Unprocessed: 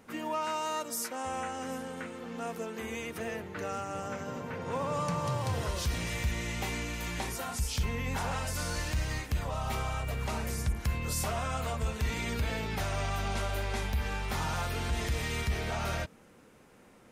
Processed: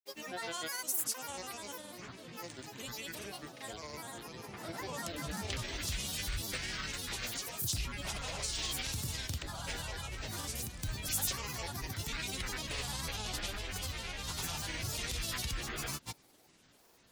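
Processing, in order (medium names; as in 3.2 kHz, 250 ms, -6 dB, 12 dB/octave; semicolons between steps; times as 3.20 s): high-order bell 6.1 kHz +13 dB 2.6 oct; granulator, pitch spread up and down by 12 st; trim -8 dB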